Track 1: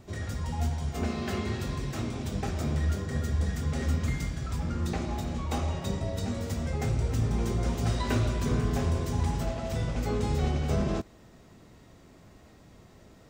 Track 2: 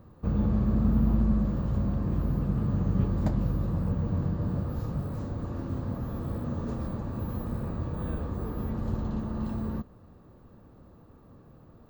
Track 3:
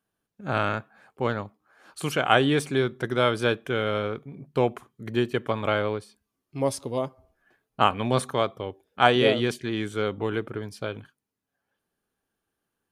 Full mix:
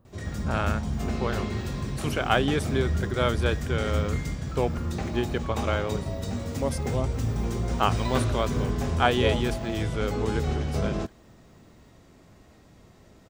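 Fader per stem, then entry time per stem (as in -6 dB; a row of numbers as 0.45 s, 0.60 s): 0.0 dB, -9.0 dB, -3.5 dB; 0.05 s, 0.00 s, 0.00 s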